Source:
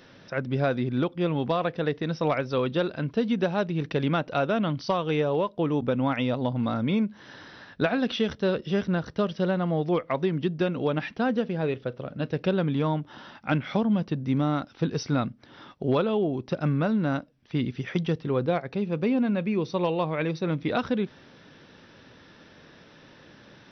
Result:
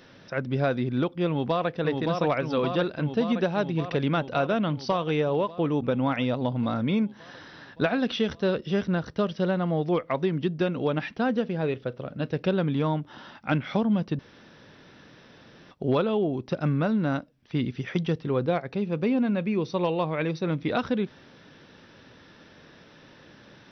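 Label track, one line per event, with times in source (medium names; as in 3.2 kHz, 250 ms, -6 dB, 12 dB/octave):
1.270000	1.750000	echo throw 570 ms, feedback 75%, level -3.5 dB
14.190000	15.710000	room tone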